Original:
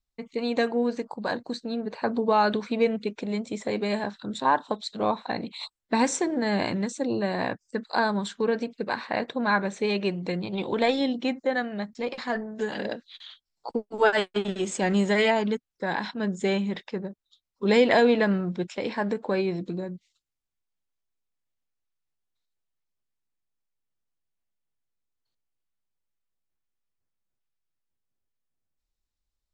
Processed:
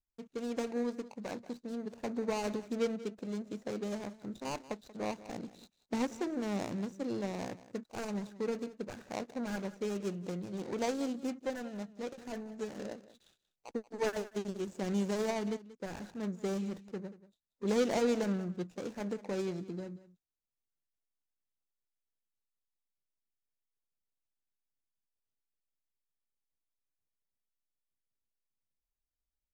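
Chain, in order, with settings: median filter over 41 samples; peaking EQ 6.6 kHz +10.5 dB 1 oct; delay 184 ms -17 dB; trim -8.5 dB

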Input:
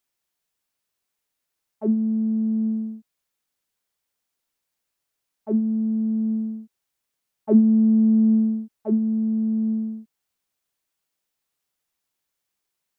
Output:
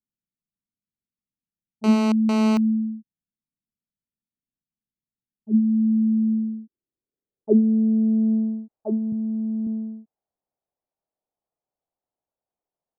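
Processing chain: 9.12–9.67 s: graphic EQ 125/250/500 Hz +11/-3/-4 dB; low-pass sweep 210 Hz -> 710 Hz, 5.69–8.55 s; 1.84–2.57 s: mobile phone buzz -23 dBFS; trim -4 dB

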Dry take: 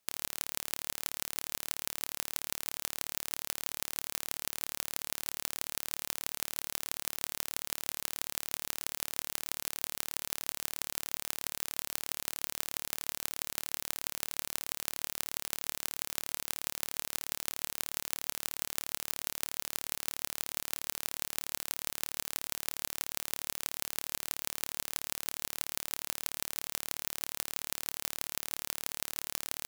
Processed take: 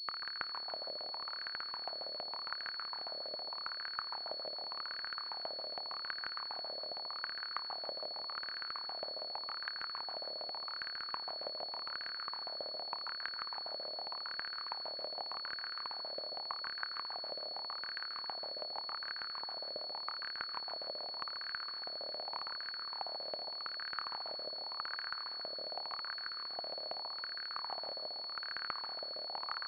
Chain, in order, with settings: ring modulator 26 Hz; wah-wah 0.85 Hz 580–1600 Hz, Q 6.8; rotary cabinet horn 6.7 Hz, later 1.1 Hz, at 20.80 s; echo whose repeats swap between lows and highs 144 ms, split 1.3 kHz, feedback 61%, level -8 dB; class-D stage that switches slowly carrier 4.4 kHz; trim +18 dB

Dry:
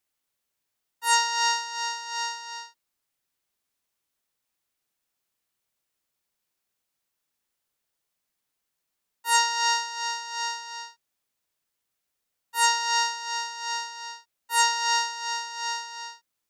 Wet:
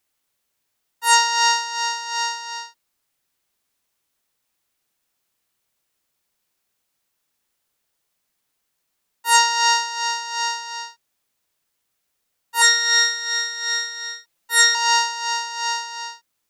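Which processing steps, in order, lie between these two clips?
12.61–14.75 s: comb 5.9 ms, depth 82%; trim +6.5 dB

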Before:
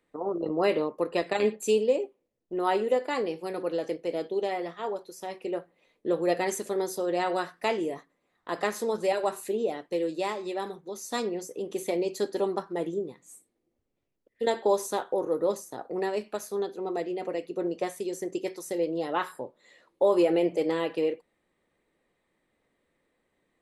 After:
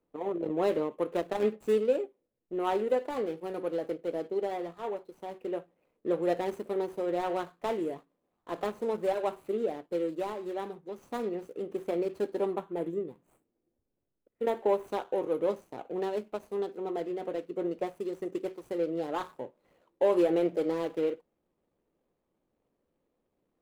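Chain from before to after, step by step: median filter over 25 samples; peaking EQ 5.2 kHz -6 dB 1.1 oct, from 12.54 s -13 dB, from 14.87 s -4 dB; trim -2 dB

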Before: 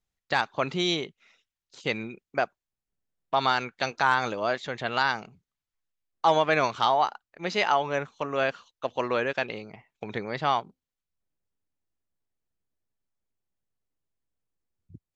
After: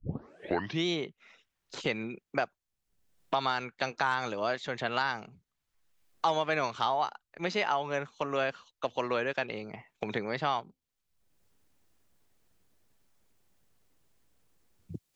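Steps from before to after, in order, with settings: tape start-up on the opening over 0.86 s; three bands compressed up and down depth 70%; trim -4.5 dB

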